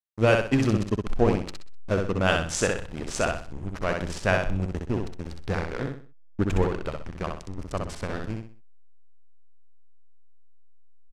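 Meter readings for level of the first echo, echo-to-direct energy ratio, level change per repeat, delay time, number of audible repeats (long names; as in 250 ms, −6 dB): −4.0 dB, −3.5 dB, −9.5 dB, 63 ms, 4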